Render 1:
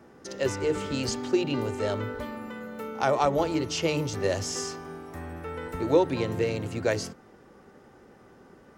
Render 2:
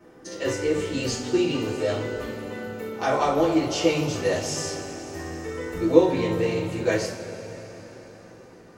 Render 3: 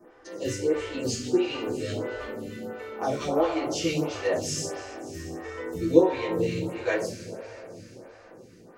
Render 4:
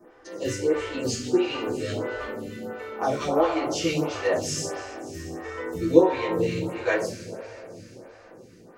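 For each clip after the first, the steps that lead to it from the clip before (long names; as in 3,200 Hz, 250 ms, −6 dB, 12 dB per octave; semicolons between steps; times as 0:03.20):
coupled-rooms reverb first 0.37 s, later 4.6 s, from −18 dB, DRR −8 dB; level −5.5 dB
phaser with staggered stages 1.5 Hz
dynamic equaliser 1,200 Hz, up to +4 dB, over −43 dBFS, Q 0.92; level +1 dB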